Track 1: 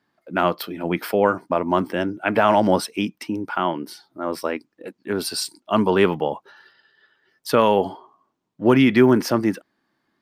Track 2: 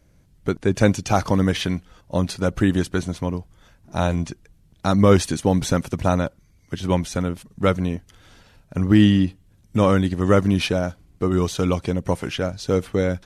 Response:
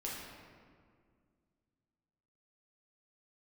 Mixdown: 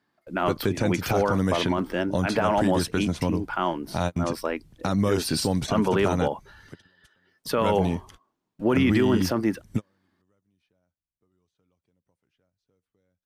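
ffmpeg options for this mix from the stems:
-filter_complex "[0:a]volume=-3dB,asplit=2[a][b];[1:a]acrossover=split=87|4400[c][d][e];[c]acompressor=threshold=-40dB:ratio=4[f];[d]acompressor=threshold=-22dB:ratio=4[g];[e]acompressor=threshold=-44dB:ratio=4[h];[f][g][h]amix=inputs=3:normalize=0,volume=1.5dB[i];[b]apad=whole_len=584653[j];[i][j]sidechaingate=range=-48dB:threshold=-55dB:ratio=16:detection=peak[k];[a][k]amix=inputs=2:normalize=0,alimiter=limit=-12.5dB:level=0:latency=1:release=23"

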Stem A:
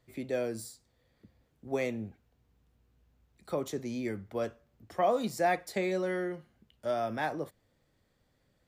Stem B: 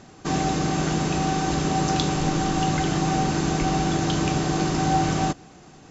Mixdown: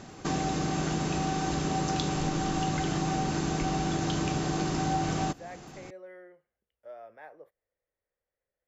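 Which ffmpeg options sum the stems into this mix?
-filter_complex "[0:a]equalizer=f=125:t=o:w=1:g=-9,equalizer=f=250:t=o:w=1:g=-10,equalizer=f=500:t=o:w=1:g=10,equalizer=f=2k:t=o:w=1:g=7,equalizer=f=4k:t=o:w=1:g=-8,equalizer=f=8k:t=o:w=1:g=-10,volume=-19.5dB[a];[1:a]volume=1dB[b];[a][b]amix=inputs=2:normalize=0,acompressor=threshold=-32dB:ratio=2"

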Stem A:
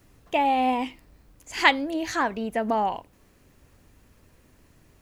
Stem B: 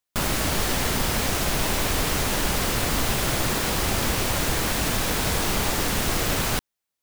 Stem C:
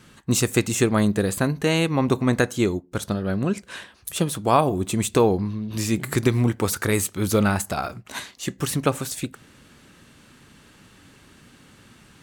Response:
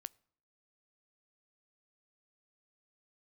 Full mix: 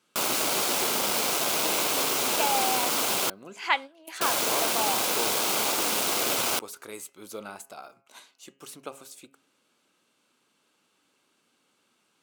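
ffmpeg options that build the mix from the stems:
-filter_complex "[0:a]equalizer=f=1.6k:w=0.51:g=11.5,adelay=2050,volume=-12.5dB[a];[1:a]acrusher=bits=3:mix=0:aa=0.5,volume=-0.5dB,asplit=3[b][c][d];[b]atrim=end=3.3,asetpts=PTS-STARTPTS,afade=t=out:st=3.296:d=0.004:c=hsin[e];[c]atrim=start=3.3:end=4.21,asetpts=PTS-STARTPTS,volume=0[f];[d]atrim=start=4.21,asetpts=PTS-STARTPTS,afade=t=in:d=0.004:c=hsin[g];[e][f][g]concat=n=3:v=0:a=1[h];[2:a]bandreject=f=136.7:t=h:w=4,bandreject=f=273.4:t=h:w=4,bandreject=f=410.1:t=h:w=4,bandreject=f=546.8:t=h:w=4,bandreject=f=683.5:t=h:w=4,bandreject=f=820.2:t=h:w=4,bandreject=f=956.9:t=h:w=4,bandreject=f=1.0936k:t=h:w=4,bandreject=f=1.2303k:t=h:w=4,bandreject=f=1.367k:t=h:w=4,bandreject=f=1.5037k:t=h:w=4,bandreject=f=1.6404k:t=h:w=4,bandreject=f=1.7771k:t=h:w=4,bandreject=f=1.9138k:t=h:w=4,bandreject=f=2.0505k:t=h:w=4,bandreject=f=2.1872k:t=h:w=4,bandreject=f=2.3239k:t=h:w=4,bandreject=f=2.4606k:t=h:w=4,bandreject=f=2.5973k:t=h:w=4,bandreject=f=2.734k:t=h:w=4,bandreject=f=2.8707k:t=h:w=4,bandreject=f=3.0074k:t=h:w=4,bandreject=f=3.1441k:t=h:w=4,volume=-15dB,asplit=2[i][j];[j]apad=whole_len=311622[k];[a][k]sidechaingate=range=-14dB:threshold=-55dB:ratio=16:detection=peak[l];[l][h][i]amix=inputs=3:normalize=0,highpass=380,equalizer=f=1.8k:w=5.7:g=-11"

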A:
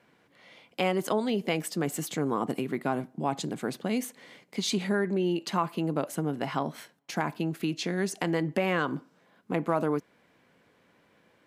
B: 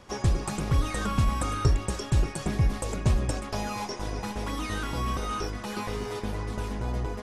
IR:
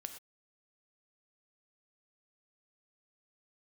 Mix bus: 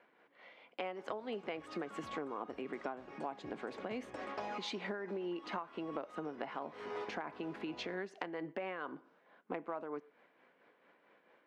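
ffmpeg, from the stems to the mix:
-filter_complex "[0:a]tremolo=f=4.5:d=0.46,volume=-0.5dB,asplit=3[a][b][c];[b]volume=-15dB[d];[1:a]adelay=850,volume=-3.5dB,asplit=2[e][f];[f]volume=-17dB[g];[c]apad=whole_len=356006[h];[e][h]sidechaincompress=threshold=-45dB:ratio=5:attack=11:release=222[i];[2:a]atrim=start_sample=2205[j];[d][g]amix=inputs=2:normalize=0[k];[k][j]afir=irnorm=-1:irlink=0[l];[a][i][l]amix=inputs=3:normalize=0,highpass=370,lowpass=2.4k,acompressor=threshold=-37dB:ratio=10"

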